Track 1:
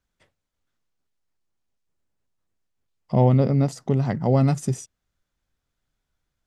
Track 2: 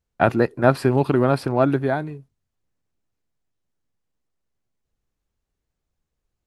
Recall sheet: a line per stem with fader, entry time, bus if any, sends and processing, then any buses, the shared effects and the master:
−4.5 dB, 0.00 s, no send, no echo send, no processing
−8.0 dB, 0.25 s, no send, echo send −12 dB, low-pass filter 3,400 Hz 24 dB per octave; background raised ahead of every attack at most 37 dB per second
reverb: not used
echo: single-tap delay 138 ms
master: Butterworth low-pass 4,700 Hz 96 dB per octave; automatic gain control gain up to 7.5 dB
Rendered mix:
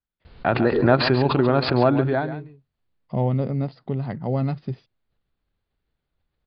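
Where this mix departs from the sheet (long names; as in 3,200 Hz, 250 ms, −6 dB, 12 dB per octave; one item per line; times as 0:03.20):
stem 1 −4.5 dB → −12.5 dB
stem 2: missing low-pass filter 3,400 Hz 24 dB per octave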